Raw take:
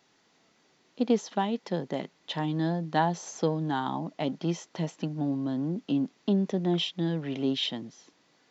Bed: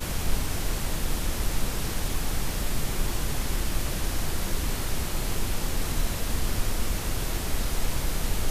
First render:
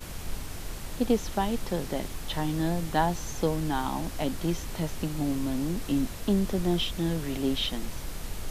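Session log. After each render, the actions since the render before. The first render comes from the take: add bed -9 dB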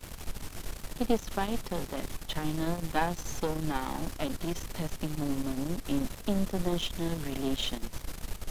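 half-wave gain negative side -12 dB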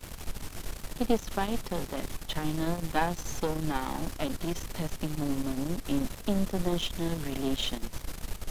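gain +1 dB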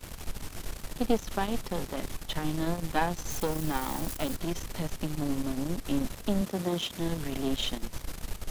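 3.3–4.36 switching spikes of -31.5 dBFS; 6.41–7 HPF 130 Hz

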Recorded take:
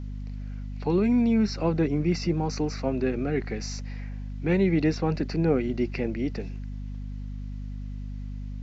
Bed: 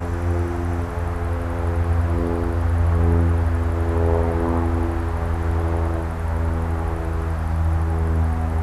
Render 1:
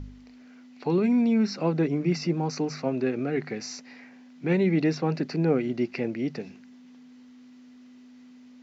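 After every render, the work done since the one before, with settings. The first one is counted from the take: de-hum 50 Hz, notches 4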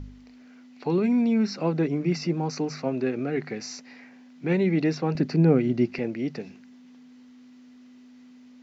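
5.15–5.99 low shelf 210 Hz +11.5 dB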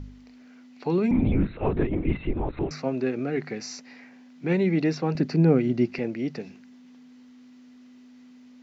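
1.11–2.71 LPC vocoder at 8 kHz whisper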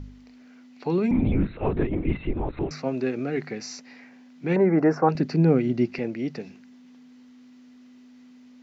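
2.86–3.46 high shelf 4300 Hz +4.5 dB; 4.56–5.09 EQ curve 210 Hz 0 dB, 800 Hz +12 dB, 1500 Hz +11 dB, 3700 Hz -27 dB, 5400 Hz -6 dB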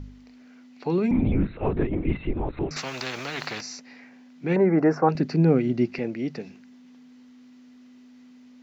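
1.23–2.01 air absorption 67 m; 2.76–3.61 spectral compressor 4:1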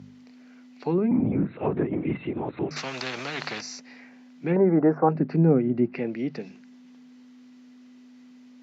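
HPF 120 Hz 24 dB/oct; treble ducked by the level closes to 1300 Hz, closed at -19.5 dBFS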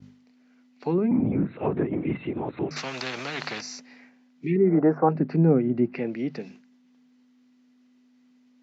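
expander -43 dBFS; 4.45–4.76 spectral repair 440–1800 Hz both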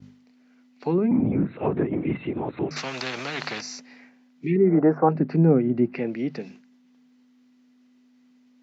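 gain +1.5 dB

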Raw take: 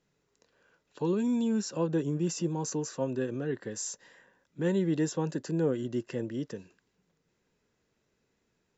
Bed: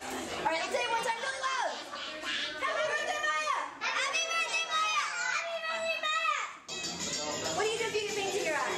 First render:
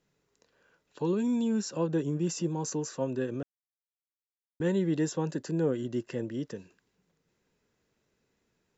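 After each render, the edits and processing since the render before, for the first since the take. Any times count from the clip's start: 3.43–4.6 mute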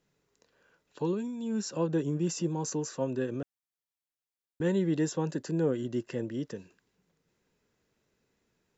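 1.03–1.66 dip -10.5 dB, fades 0.29 s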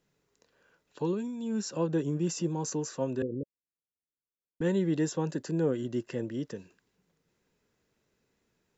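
3.22–4.61 steep low-pass 550 Hz 96 dB/oct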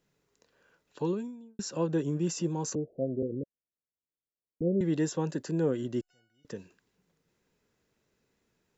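1.07–1.59 studio fade out; 2.75–4.81 steep low-pass 710 Hz 96 dB/oct; 6.01–6.45 resonator 740 Hz, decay 0.45 s, mix 100%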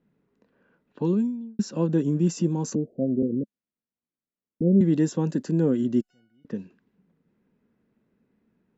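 low-pass opened by the level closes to 2100 Hz, open at -29 dBFS; bell 220 Hz +14 dB 1 oct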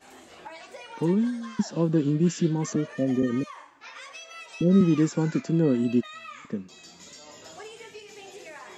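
add bed -12 dB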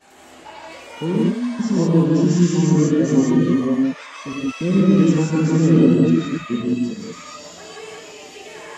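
reverse delay 0.481 s, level -1.5 dB; non-linear reverb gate 0.2 s rising, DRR -4 dB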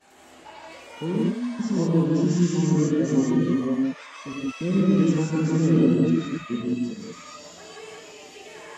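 gain -5.5 dB

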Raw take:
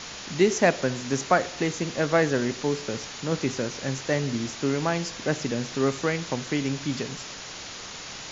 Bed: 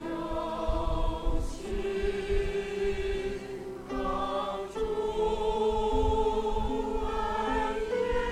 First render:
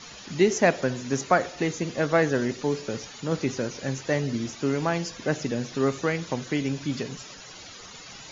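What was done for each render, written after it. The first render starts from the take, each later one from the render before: denoiser 12 dB, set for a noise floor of -39 dBFS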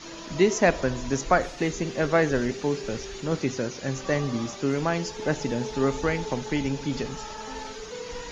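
add bed -8.5 dB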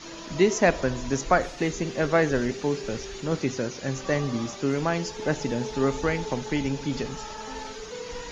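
nothing audible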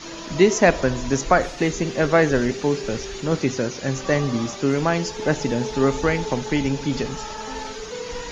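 gain +5 dB; limiter -3 dBFS, peak gain reduction 2 dB

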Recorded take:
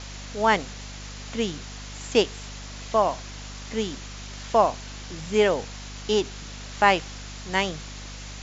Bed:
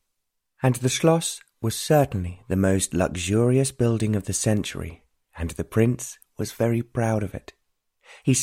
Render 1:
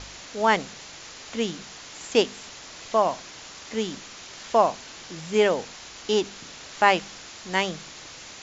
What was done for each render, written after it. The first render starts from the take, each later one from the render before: de-hum 50 Hz, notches 5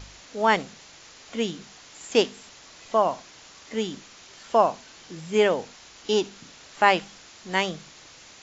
noise print and reduce 6 dB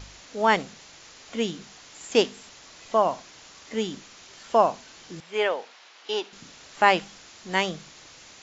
5.2–6.33 BPF 560–4100 Hz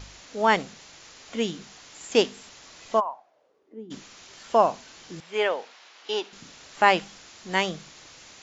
2.99–3.9 band-pass 1100 Hz -> 260 Hz, Q 5.9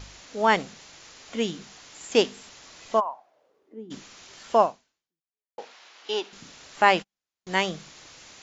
4.62–5.58 fade out exponential; 6.88–7.47 gate -36 dBFS, range -44 dB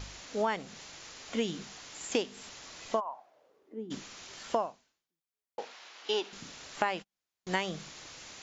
compressor 16:1, threshold -26 dBFS, peak gain reduction 15 dB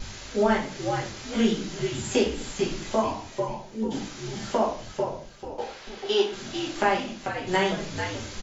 frequency-shifting echo 0.442 s, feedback 41%, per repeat -83 Hz, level -6.5 dB; shoebox room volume 38 m³, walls mixed, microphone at 1.2 m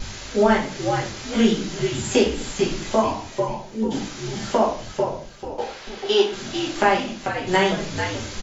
gain +5 dB

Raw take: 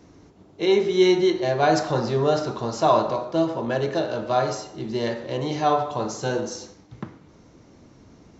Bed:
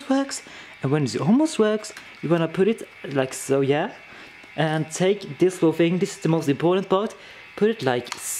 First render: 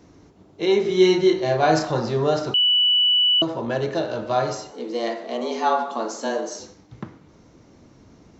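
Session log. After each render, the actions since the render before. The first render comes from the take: 0.82–1.85 doubler 32 ms -5 dB; 2.54–3.42 bleep 2960 Hz -14.5 dBFS; 4.71–6.6 frequency shift +110 Hz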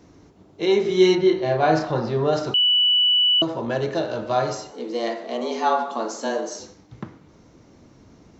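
1.15–2.33 air absorption 140 m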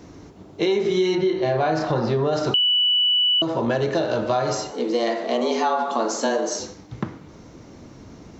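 in parallel at +2.5 dB: limiter -16 dBFS, peak gain reduction 10.5 dB; on the sum: compressor 6:1, threshold -18 dBFS, peak gain reduction 10.5 dB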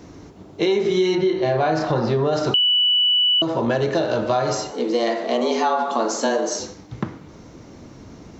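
gain +1.5 dB

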